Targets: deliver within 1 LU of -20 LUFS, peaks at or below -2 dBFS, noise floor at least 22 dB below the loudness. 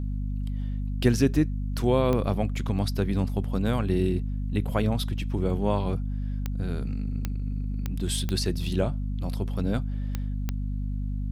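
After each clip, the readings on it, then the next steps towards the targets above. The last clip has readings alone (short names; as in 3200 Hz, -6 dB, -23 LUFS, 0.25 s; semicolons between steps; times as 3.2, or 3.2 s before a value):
clicks 7; hum 50 Hz; harmonics up to 250 Hz; hum level -27 dBFS; loudness -28.0 LUFS; peak -8.5 dBFS; loudness target -20.0 LUFS
-> de-click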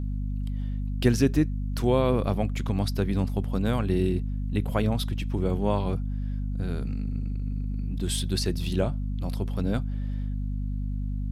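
clicks 0; hum 50 Hz; harmonics up to 250 Hz; hum level -27 dBFS
-> notches 50/100/150/200/250 Hz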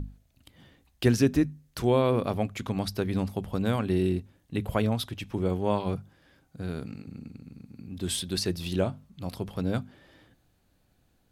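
hum none; loudness -29.0 LUFS; peak -10.0 dBFS; loudness target -20.0 LUFS
-> gain +9 dB; limiter -2 dBFS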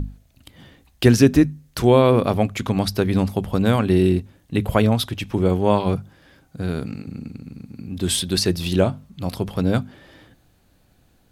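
loudness -20.0 LUFS; peak -2.0 dBFS; noise floor -59 dBFS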